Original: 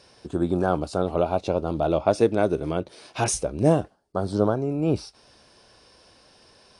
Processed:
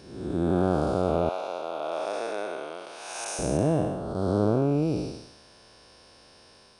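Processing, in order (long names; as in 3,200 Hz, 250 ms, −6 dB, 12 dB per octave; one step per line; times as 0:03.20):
spectrum smeared in time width 353 ms
0:01.29–0:03.39: high-pass filter 770 Hz 12 dB per octave
level +2.5 dB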